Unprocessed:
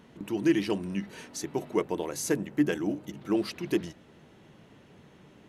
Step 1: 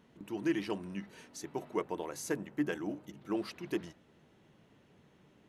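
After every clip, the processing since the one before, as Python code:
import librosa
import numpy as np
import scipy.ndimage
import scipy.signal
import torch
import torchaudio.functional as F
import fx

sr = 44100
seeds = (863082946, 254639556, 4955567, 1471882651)

y = fx.dynamic_eq(x, sr, hz=1100.0, q=0.7, threshold_db=-44.0, ratio=4.0, max_db=6)
y = y * 10.0 ** (-9.0 / 20.0)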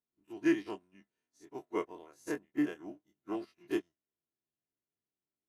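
y = fx.spec_dilate(x, sr, span_ms=60)
y = y + 0.38 * np.pad(y, (int(2.9 * sr / 1000.0), 0))[:len(y)]
y = fx.upward_expand(y, sr, threshold_db=-49.0, expansion=2.5)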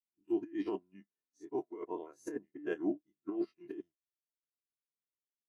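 y = fx.over_compress(x, sr, threshold_db=-42.0, ratio=-1.0)
y = fx.spectral_expand(y, sr, expansion=1.5)
y = y * 10.0 ** (3.0 / 20.0)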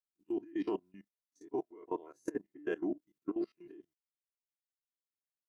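y = fx.level_steps(x, sr, step_db=19)
y = y * 10.0 ** (5.5 / 20.0)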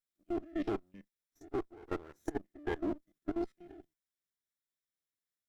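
y = fx.lower_of_two(x, sr, delay_ms=0.55)
y = y * 10.0 ** (1.0 / 20.0)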